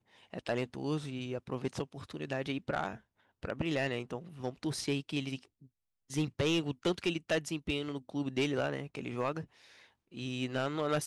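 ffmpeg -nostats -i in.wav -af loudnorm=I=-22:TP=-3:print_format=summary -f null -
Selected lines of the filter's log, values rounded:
Input Integrated:    -35.7 LUFS
Input True Peak:     -23.2 dBTP
Input LRA:             3.8 LU
Input Threshold:     -46.2 LUFS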